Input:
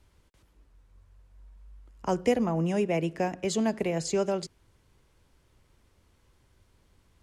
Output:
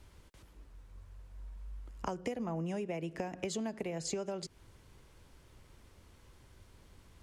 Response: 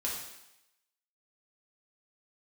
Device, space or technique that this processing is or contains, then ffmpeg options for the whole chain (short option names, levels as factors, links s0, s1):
serial compression, leveller first: -af "acompressor=threshold=0.0178:ratio=1.5,acompressor=threshold=0.0112:ratio=8,volume=1.78"